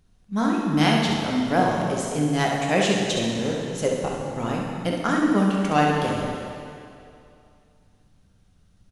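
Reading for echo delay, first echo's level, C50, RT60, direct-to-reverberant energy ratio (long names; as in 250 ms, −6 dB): 67 ms, −6.5 dB, −0.5 dB, 2.6 s, −2.5 dB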